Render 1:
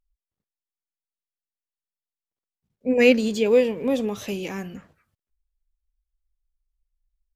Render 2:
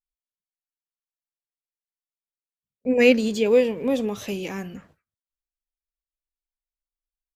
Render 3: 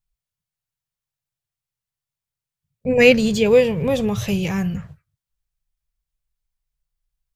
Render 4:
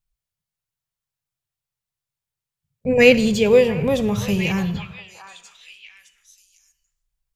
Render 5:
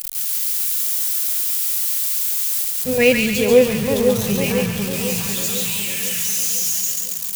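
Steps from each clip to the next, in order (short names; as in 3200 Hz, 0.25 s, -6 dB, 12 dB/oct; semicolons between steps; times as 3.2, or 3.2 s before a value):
gate with hold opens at -47 dBFS
resonant low shelf 190 Hz +11.5 dB, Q 3; gain +6 dB
delay with a stepping band-pass 0.698 s, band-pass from 1100 Hz, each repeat 1.4 oct, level -7 dB; on a send at -14.5 dB: reverb RT60 0.70 s, pre-delay 46 ms
switching spikes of -14.5 dBFS; on a send: split-band echo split 1100 Hz, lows 0.499 s, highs 0.139 s, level -3 dB; on the sum: gain -2.5 dB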